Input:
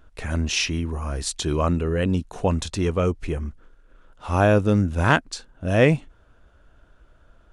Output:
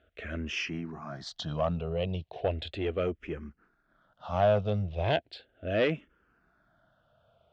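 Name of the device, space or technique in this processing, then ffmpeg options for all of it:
barber-pole phaser into a guitar amplifier: -filter_complex "[0:a]asplit=2[link_01][link_02];[link_02]afreqshift=-0.36[link_03];[link_01][link_03]amix=inputs=2:normalize=1,asoftclip=type=tanh:threshold=-15.5dB,highpass=97,equalizer=frequency=270:width_type=q:width=4:gain=-5,equalizer=frequency=660:width_type=q:width=4:gain=8,equalizer=frequency=990:width_type=q:width=4:gain=-6,equalizer=frequency=3200:width_type=q:width=4:gain=4,lowpass=frequency=4400:width=0.5412,lowpass=frequency=4400:width=1.3066,volume=-4.5dB"

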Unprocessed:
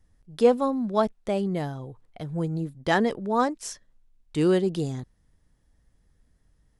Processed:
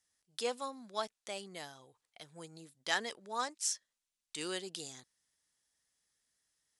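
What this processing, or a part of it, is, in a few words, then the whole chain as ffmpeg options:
piezo pickup straight into a mixer: -af "lowpass=8200,aderivative,volume=5dB"

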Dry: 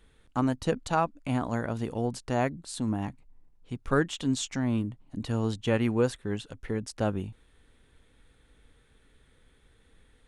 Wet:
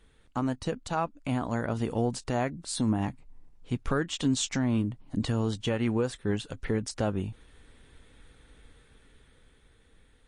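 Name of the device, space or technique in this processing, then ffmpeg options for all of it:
low-bitrate web radio: -af "dynaudnorm=framelen=320:gausssize=11:maxgain=6.5dB,alimiter=limit=-16.5dB:level=0:latency=1:release=326" -ar 24000 -c:a libmp3lame -b:a 40k

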